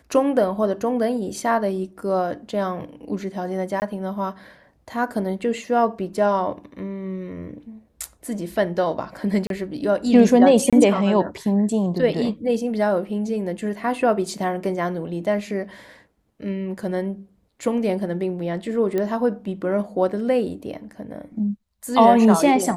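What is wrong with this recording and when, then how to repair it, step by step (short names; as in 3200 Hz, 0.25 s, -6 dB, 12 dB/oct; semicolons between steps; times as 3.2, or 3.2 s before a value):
3.8–3.82 gap 19 ms
9.47–9.5 gap 32 ms
10.7–10.73 gap 26 ms
18.98 pop -13 dBFS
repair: de-click; interpolate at 3.8, 19 ms; interpolate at 9.47, 32 ms; interpolate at 10.7, 26 ms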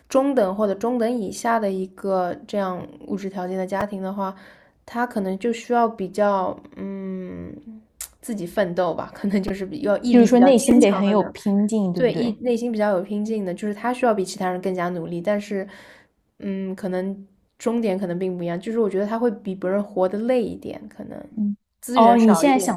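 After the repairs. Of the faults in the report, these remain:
none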